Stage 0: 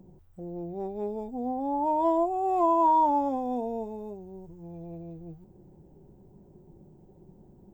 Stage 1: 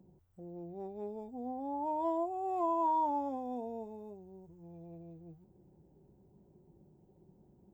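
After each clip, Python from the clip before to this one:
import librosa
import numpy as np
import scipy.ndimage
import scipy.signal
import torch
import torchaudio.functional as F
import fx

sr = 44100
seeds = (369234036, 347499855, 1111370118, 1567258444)

y = scipy.signal.sosfilt(scipy.signal.butter(2, 45.0, 'highpass', fs=sr, output='sos'), x)
y = F.gain(torch.from_numpy(y), -9.0).numpy()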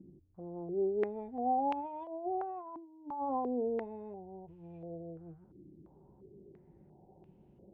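y = fx.over_compress(x, sr, threshold_db=-38.0, ratio=-0.5)
y = fx.filter_held_lowpass(y, sr, hz=2.9, low_hz=300.0, high_hz=2700.0)
y = F.gain(torch.from_numpy(y), -1.5).numpy()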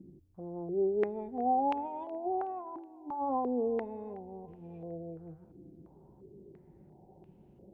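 y = fx.echo_feedback(x, sr, ms=371, feedback_pct=52, wet_db=-21.5)
y = F.gain(torch.from_numpy(y), 2.5).numpy()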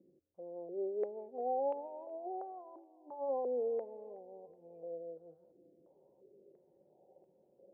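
y = fx.bandpass_q(x, sr, hz=540.0, q=6.1)
y = F.gain(torch.from_numpy(y), 4.0).numpy()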